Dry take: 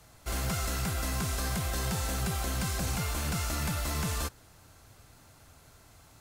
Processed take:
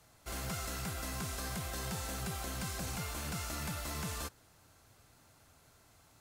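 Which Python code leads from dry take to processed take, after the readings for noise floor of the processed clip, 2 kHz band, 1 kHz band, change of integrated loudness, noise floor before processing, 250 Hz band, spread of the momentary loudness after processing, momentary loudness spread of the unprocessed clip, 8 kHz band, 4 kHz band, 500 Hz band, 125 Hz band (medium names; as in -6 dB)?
-65 dBFS, -6.0 dB, -6.0 dB, -7.0 dB, -57 dBFS, -7.0 dB, 2 LU, 2 LU, -6.0 dB, -6.0 dB, -6.0 dB, -9.0 dB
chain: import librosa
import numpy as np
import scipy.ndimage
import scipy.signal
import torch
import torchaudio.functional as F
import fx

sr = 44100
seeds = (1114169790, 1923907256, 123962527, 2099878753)

y = fx.low_shelf(x, sr, hz=80.0, db=-7.0)
y = F.gain(torch.from_numpy(y), -6.0).numpy()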